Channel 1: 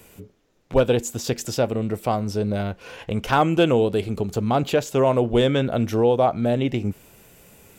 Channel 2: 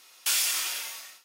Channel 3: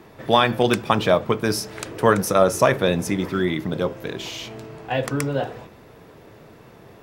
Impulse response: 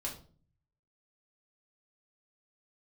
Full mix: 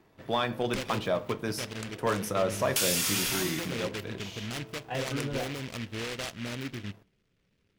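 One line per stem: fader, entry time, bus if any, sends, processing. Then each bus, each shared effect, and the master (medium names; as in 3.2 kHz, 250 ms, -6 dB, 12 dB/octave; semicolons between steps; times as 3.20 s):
-17.5 dB, 0.00 s, send -18.5 dB, local Wiener filter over 41 samples; peak limiter -15.5 dBFS, peak gain reduction 8.5 dB; delay time shaken by noise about 2.2 kHz, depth 0.29 ms
+1.5 dB, 2.50 s, no send, compression, threshold -30 dBFS, peak gain reduction 8 dB
-16.0 dB, 0.00 s, send -11.5 dB, none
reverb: on, RT60 0.40 s, pre-delay 3 ms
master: waveshaping leveller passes 1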